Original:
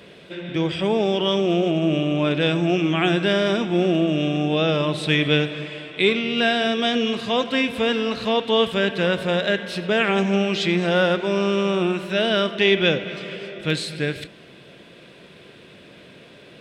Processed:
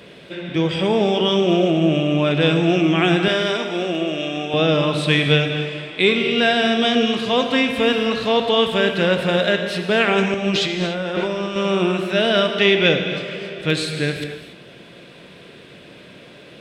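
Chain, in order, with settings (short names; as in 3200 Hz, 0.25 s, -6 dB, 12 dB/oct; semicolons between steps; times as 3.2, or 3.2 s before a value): 3.28–4.54 HPF 670 Hz 6 dB/oct; 10.34–11.56 negative-ratio compressor -26 dBFS, ratio -1; non-linear reverb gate 0.31 s flat, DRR 6 dB; gain +2.5 dB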